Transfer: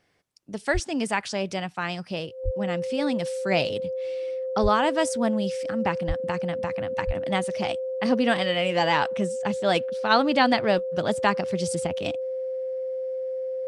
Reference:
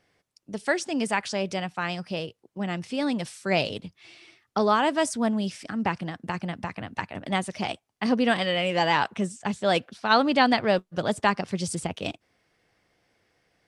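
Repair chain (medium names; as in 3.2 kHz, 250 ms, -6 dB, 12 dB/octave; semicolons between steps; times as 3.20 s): band-stop 520 Hz, Q 30; de-plosive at 0.73/2.44/4.62/6.07/7.06 s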